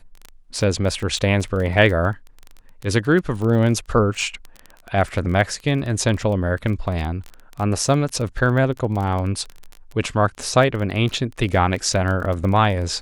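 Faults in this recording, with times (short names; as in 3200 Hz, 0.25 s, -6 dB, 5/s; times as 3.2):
crackle 18/s -25 dBFS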